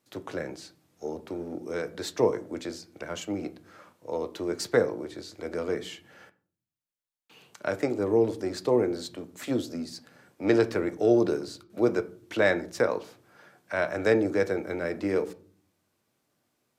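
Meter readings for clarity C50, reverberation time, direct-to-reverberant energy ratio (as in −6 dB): 19.0 dB, 0.50 s, 10.5 dB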